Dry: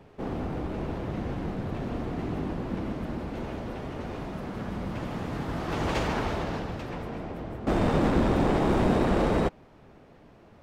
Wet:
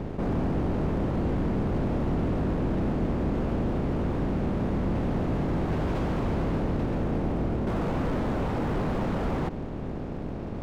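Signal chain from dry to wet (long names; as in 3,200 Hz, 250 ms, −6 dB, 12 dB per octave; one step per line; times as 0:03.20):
compressor on every frequency bin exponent 0.4
wave folding −20 dBFS
high-shelf EQ 2,900 Hz −11.5 dB
dead-zone distortion −44 dBFS
low-shelf EQ 440 Hz +9.5 dB
level −7 dB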